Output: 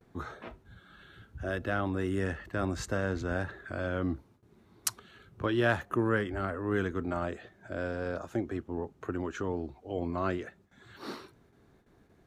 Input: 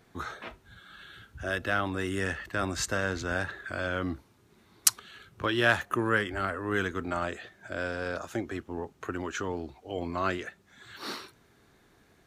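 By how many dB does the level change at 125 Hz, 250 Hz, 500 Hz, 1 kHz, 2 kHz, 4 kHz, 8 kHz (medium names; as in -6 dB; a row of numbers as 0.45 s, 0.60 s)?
+2.0 dB, +1.0 dB, 0.0 dB, -4.0 dB, -6.0 dB, -9.0 dB, -9.5 dB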